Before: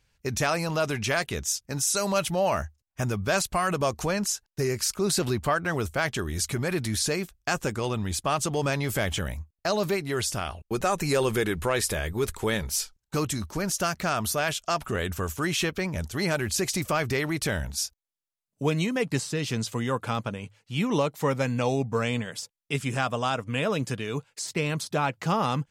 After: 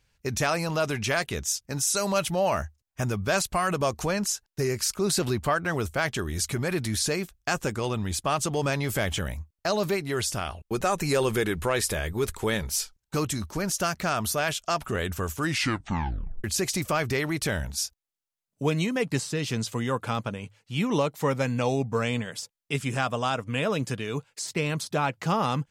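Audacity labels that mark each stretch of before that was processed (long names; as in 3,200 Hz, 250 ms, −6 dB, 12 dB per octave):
15.400000	15.400000	tape stop 1.04 s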